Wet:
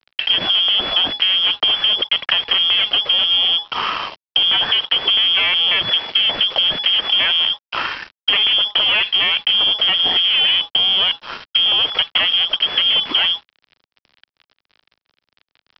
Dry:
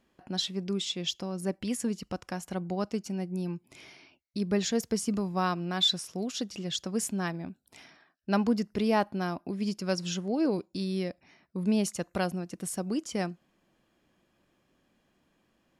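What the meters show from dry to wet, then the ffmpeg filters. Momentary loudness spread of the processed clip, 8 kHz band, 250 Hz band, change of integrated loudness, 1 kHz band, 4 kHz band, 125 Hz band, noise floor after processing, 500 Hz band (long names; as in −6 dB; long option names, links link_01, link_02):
5 LU, below −15 dB, −10.5 dB, +17.0 dB, +9.0 dB, +25.0 dB, can't be measured, below −85 dBFS, −0.5 dB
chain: -filter_complex "[0:a]apsyclip=32dB,asplit=2[link_01][link_02];[link_02]acompressor=threshold=-15dB:ratio=12,volume=-3dB[link_03];[link_01][link_03]amix=inputs=2:normalize=0,aeval=exprs='clip(val(0),-1,0.335)':channel_layout=same,lowpass=frequency=2900:width_type=q:width=0.5098,lowpass=frequency=2900:width_type=q:width=0.6013,lowpass=frequency=2900:width_type=q:width=0.9,lowpass=frequency=2900:width_type=q:width=2.563,afreqshift=-3400,aresample=11025,aeval=exprs='sgn(val(0))*max(abs(val(0))-0.0473,0)':channel_layout=same,aresample=44100,acrossover=split=190|1000[link_04][link_05][link_06];[link_04]acompressor=threshold=-44dB:ratio=4[link_07];[link_05]acompressor=threshold=-30dB:ratio=4[link_08];[link_06]acompressor=threshold=-15dB:ratio=4[link_09];[link_07][link_08][link_09]amix=inputs=3:normalize=0"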